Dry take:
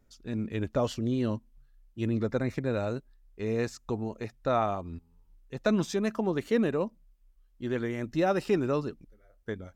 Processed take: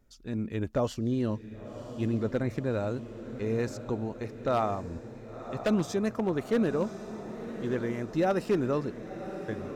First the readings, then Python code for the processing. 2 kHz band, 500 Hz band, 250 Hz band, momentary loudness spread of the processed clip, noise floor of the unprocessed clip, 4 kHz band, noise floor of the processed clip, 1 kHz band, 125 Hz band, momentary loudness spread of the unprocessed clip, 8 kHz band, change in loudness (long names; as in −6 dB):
−2.0 dB, 0.0 dB, +0.5 dB, 12 LU, −64 dBFS, −2.5 dB, −45 dBFS, −0.5 dB, +0.5 dB, 12 LU, −1.0 dB, −0.5 dB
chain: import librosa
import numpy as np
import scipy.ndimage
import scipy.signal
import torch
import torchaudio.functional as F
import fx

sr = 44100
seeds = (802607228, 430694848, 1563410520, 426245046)

y = fx.dynamic_eq(x, sr, hz=3200.0, q=0.78, threshold_db=-50.0, ratio=4.0, max_db=-4)
y = fx.echo_diffused(y, sr, ms=1049, feedback_pct=59, wet_db=-11.5)
y = 10.0 ** (-18.0 / 20.0) * (np.abs((y / 10.0 ** (-18.0 / 20.0) + 3.0) % 4.0 - 2.0) - 1.0)